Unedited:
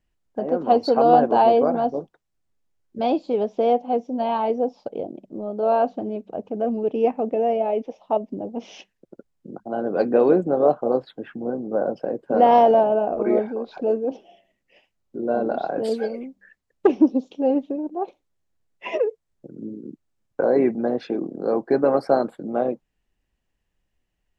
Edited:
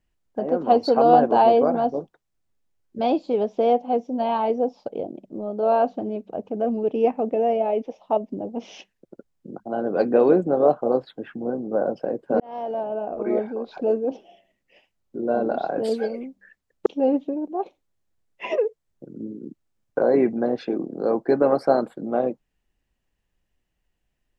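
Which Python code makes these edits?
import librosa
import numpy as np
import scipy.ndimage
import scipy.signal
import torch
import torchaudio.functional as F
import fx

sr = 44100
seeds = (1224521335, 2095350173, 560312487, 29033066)

y = fx.edit(x, sr, fx.fade_in_span(start_s=12.4, length_s=1.36),
    fx.cut(start_s=16.86, length_s=0.42), tone=tone)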